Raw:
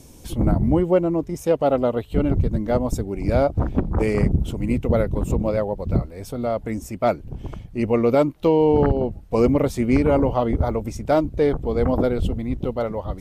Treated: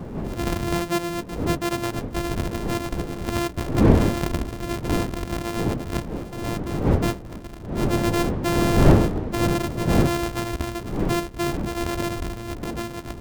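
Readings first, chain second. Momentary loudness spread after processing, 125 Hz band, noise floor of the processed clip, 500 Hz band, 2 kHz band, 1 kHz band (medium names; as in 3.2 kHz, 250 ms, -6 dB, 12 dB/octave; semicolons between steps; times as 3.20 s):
12 LU, -0.5 dB, -37 dBFS, -6.5 dB, +4.5 dB, -1.0 dB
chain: sorted samples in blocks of 128 samples; wind noise 300 Hz -18 dBFS; trim -7 dB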